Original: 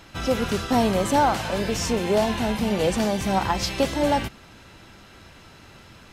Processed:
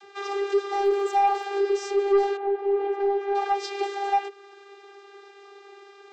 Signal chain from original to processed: vocoder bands 32, saw 399 Hz; in parallel at -3 dB: compressor, threshold -34 dBFS, peak gain reduction 20.5 dB; on the sum: soft clip -14.5 dBFS, distortion -14 dB; 0.84–1.44 crackle 52/s -39 dBFS; 2.36–3.34 LPF 1100 Hz -> 2200 Hz 12 dB/oct

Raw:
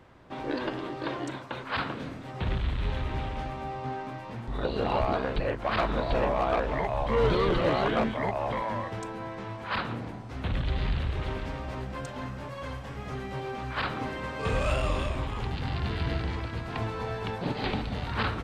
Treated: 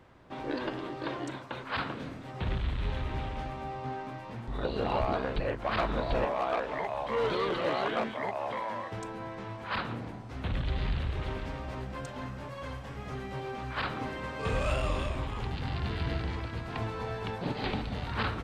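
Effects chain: 6.25–8.92 HPF 380 Hz 6 dB/oct; gain -2.5 dB

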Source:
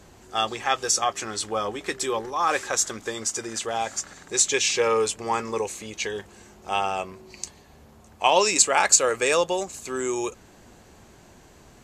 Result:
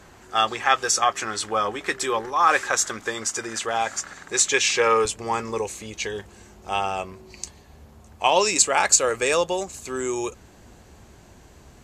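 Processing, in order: bell 1500 Hz +7 dB 1.6 oct, from 5.05 s 63 Hz

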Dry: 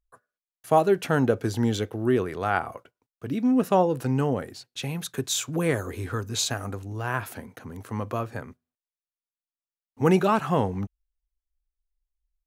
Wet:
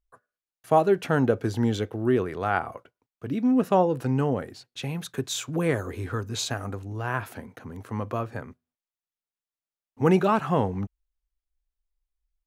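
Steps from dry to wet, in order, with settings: high shelf 4600 Hz -7 dB

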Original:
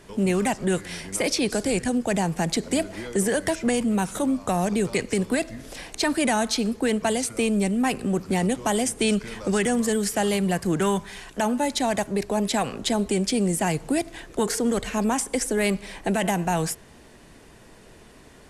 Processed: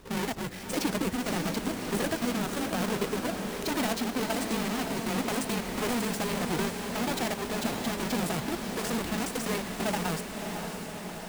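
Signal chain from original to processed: half-waves squared off; harmonic-percussive split harmonic -11 dB; granular stretch 0.61×, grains 39 ms; harmonic-percussive split percussive -13 dB; diffused feedback echo 0.595 s, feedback 69%, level -6 dB

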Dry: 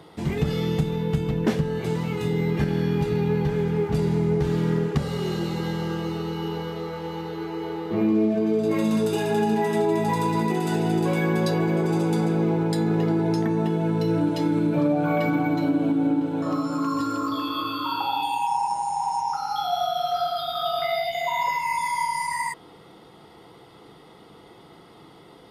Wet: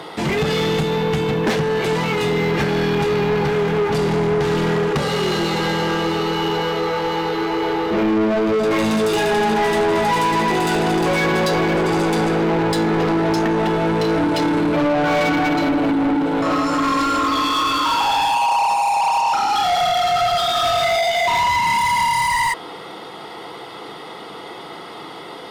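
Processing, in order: overdrive pedal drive 25 dB, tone 4800 Hz, clips at -11 dBFS

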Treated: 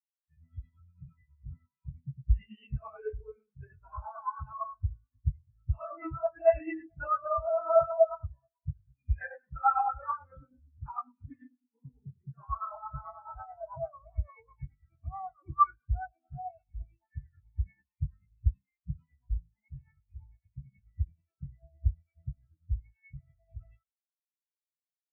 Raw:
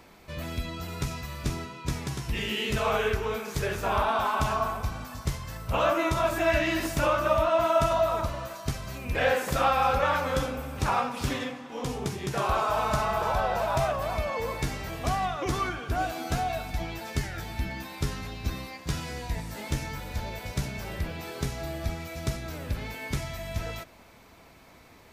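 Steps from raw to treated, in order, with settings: in parallel at -2.5 dB: limiter -23 dBFS, peak gain reduction 11.5 dB; on the sum: graphic EQ 500/2000/4000 Hz -7/+4/-3 dB; tremolo 9.1 Hz, depth 44%; on a send at -11 dB: bell 150 Hz -7.5 dB 1 oct + reverb RT60 0.55 s, pre-delay 3 ms; on the sum: crackling interface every 0.26 s, samples 64, zero, from 0.46; spectral expander 4:1

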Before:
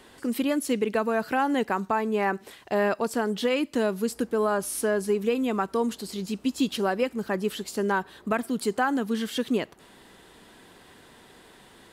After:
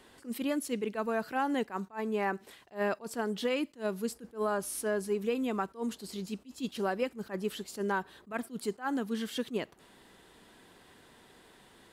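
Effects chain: attack slew limiter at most 270 dB/s; gain -6 dB

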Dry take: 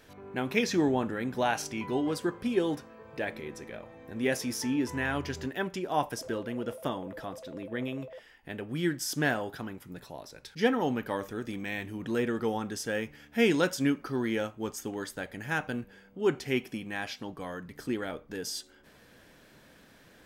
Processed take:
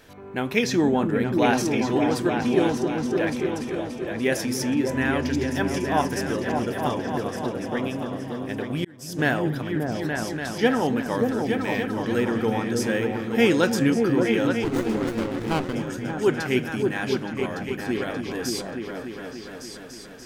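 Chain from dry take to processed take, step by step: repeats that get brighter 0.29 s, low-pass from 200 Hz, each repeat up 2 oct, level 0 dB; 8.59–9.19 auto swell 0.678 s; 14.64–15.75 running maximum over 17 samples; gain +5 dB

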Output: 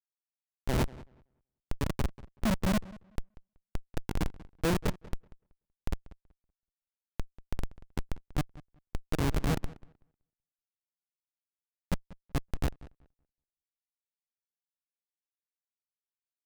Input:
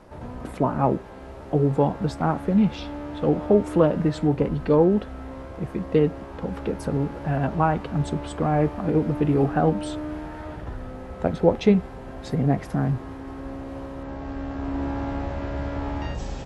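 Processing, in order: slices in reverse order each 0.153 s, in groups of 2; auto swell 0.128 s; on a send at -2 dB: reverb RT60 0.55 s, pre-delay 3 ms; on the sum: Schmitt trigger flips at -15.5 dBFS; darkening echo 0.189 s, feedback 18%, low-pass 3000 Hz, level -22 dB; in parallel at 0 dB: limiter -29 dBFS, peak gain reduction 10 dB; on the sum: gain -4 dB

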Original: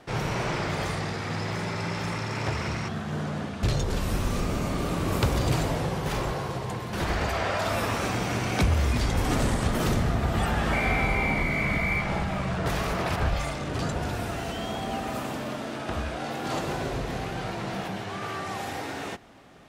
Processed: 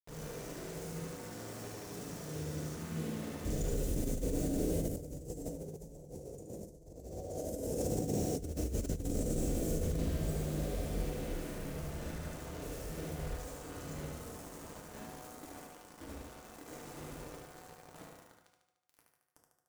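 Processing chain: Doppler pass-by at 6.4, 17 m/s, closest 5.9 m; elliptic band-stop 520–6600 Hz, stop band 50 dB; bell 110 Hz -11 dB 0.44 oct; notches 60/120/180/240/300/360/420/480/540/600 Hz; phaser 1 Hz, delay 3.7 ms, feedback 26%; bit-crush 10-bit; thinning echo 74 ms, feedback 60%, high-pass 200 Hz, level -4 dB; on a send at -1 dB: reverb RT60 1.0 s, pre-delay 3 ms; on the sum: negative-ratio compressor -42 dBFS, ratio -0.5; gain +6.5 dB

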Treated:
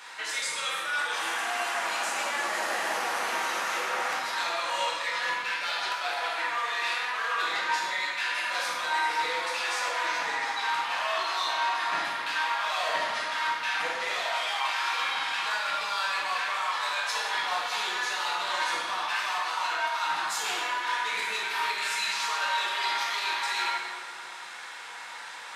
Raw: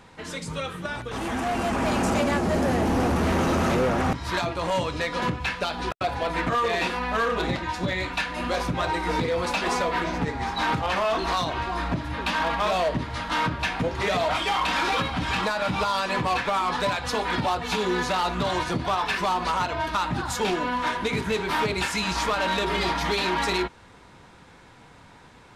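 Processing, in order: HPF 1300 Hz 12 dB/oct; reverse; compressor 16:1, threshold -41 dBFS, peak gain reduction 18 dB; reverse; plate-style reverb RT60 1.7 s, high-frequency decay 0.65×, DRR -5.5 dB; gain +8.5 dB

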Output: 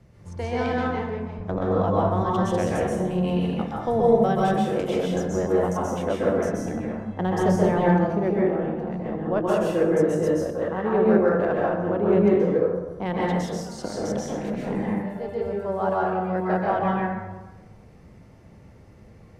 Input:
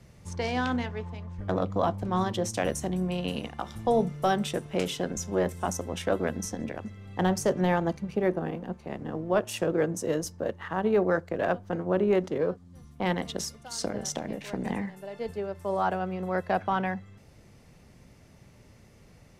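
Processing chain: high shelf 2200 Hz -10.5 dB; plate-style reverb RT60 1.1 s, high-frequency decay 0.55×, pre-delay 0.115 s, DRR -5 dB

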